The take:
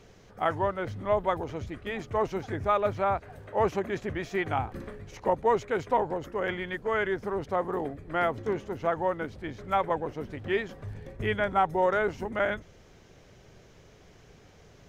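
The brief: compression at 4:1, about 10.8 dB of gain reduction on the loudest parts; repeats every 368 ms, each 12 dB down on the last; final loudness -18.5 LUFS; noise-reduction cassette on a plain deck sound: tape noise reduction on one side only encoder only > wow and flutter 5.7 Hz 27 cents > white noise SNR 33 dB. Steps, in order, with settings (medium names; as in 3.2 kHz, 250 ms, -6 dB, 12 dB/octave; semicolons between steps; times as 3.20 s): compression 4:1, threshold -33 dBFS; feedback delay 368 ms, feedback 25%, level -12 dB; tape noise reduction on one side only encoder only; wow and flutter 5.7 Hz 27 cents; white noise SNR 33 dB; trim +18.5 dB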